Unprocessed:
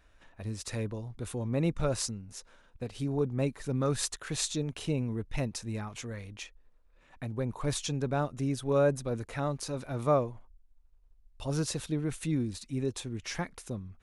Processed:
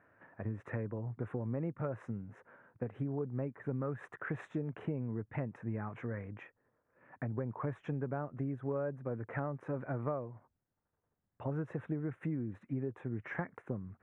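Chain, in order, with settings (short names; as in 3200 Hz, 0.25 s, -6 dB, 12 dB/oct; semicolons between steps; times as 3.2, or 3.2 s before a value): elliptic band-pass 110–1800 Hz, stop band 40 dB; compressor 10:1, threshold -36 dBFS, peak gain reduction 16 dB; gain +3 dB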